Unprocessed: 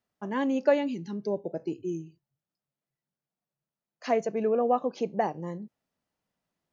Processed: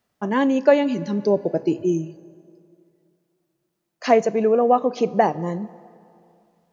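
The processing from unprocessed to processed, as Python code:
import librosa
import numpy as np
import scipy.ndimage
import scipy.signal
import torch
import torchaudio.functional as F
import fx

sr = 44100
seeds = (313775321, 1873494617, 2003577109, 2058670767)

p1 = fx.rev_plate(x, sr, seeds[0], rt60_s=2.5, hf_ratio=0.7, predelay_ms=0, drr_db=18.5)
p2 = fx.rider(p1, sr, range_db=10, speed_s=0.5)
p3 = p1 + (p2 * 10.0 ** (0.0 / 20.0))
y = p3 * 10.0 ** (3.0 / 20.0)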